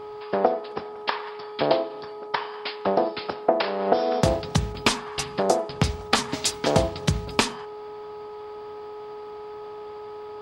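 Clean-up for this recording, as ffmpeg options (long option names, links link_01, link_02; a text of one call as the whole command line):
ffmpeg -i in.wav -af "bandreject=frequency=420.8:width_type=h:width=4,bandreject=frequency=841.6:width_type=h:width=4,bandreject=frequency=1262.4:width_type=h:width=4,bandreject=frequency=970:width=30" out.wav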